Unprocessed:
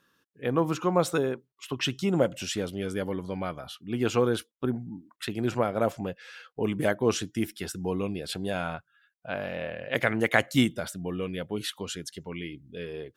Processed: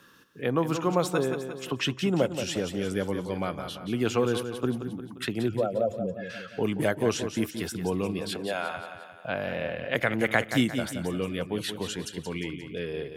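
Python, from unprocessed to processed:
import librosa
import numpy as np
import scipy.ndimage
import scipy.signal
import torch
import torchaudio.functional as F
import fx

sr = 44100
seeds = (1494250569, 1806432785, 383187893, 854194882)

p1 = fx.spec_expand(x, sr, power=2.4, at=(5.47, 6.29), fade=0.02)
p2 = fx.highpass(p1, sr, hz=fx.line((8.2, 200.0), (8.76, 740.0)), slope=12, at=(8.2, 8.76), fade=0.02)
p3 = p2 + fx.echo_feedback(p2, sr, ms=176, feedback_pct=41, wet_db=-10, dry=0)
y = fx.band_squash(p3, sr, depth_pct=40)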